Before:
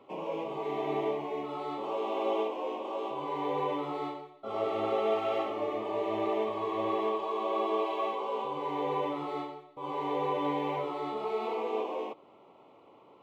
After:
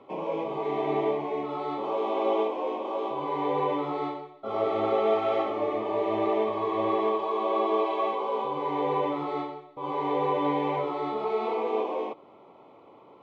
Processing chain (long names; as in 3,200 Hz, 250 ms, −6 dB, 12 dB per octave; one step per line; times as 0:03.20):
high-frequency loss of the air 100 metres
notch filter 2,800 Hz, Q 9.8
level +5 dB